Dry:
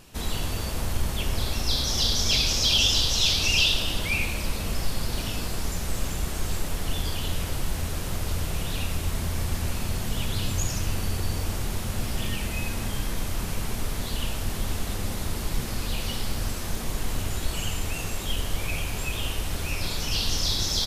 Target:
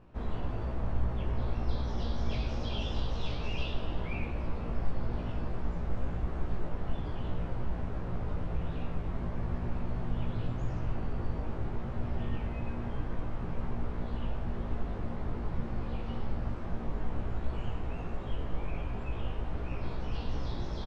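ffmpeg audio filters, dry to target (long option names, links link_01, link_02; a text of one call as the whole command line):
ffmpeg -i in.wav -filter_complex "[0:a]lowpass=1200,asplit=2[link_01][link_02];[link_02]adelay=17,volume=-2dB[link_03];[link_01][link_03]amix=inputs=2:normalize=0,volume=-6dB" out.wav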